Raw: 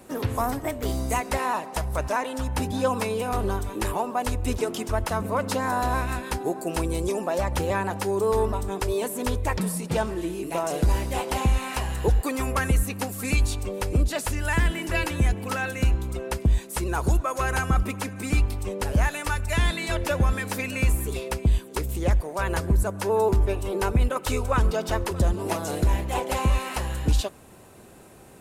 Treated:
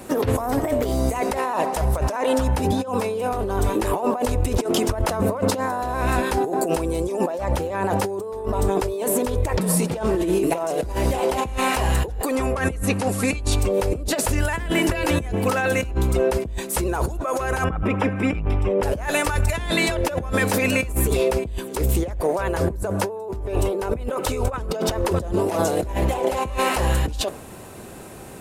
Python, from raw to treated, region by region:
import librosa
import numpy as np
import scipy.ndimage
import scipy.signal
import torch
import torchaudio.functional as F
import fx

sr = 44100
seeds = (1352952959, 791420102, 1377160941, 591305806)

y = fx.chain(x, sr, fx.brickwall_lowpass(high_hz=12000.0),
    fx.high_shelf(hz=7700.0, db=-6.5), at=(12.35, 13.52))
y = fx.chain(y, sr, fx.savgol(points=25),
    fx.transformer_sat(knee_hz=94.0), at=(17.64, 18.83))
y = fx.dynamic_eq(y, sr, hz=530.0, q=0.85, threshold_db=-39.0, ratio=4.0, max_db=7)
y = fx.over_compress(y, sr, threshold_db=-28.0, ratio=-1.0)
y = F.gain(torch.from_numpy(y), 5.0).numpy()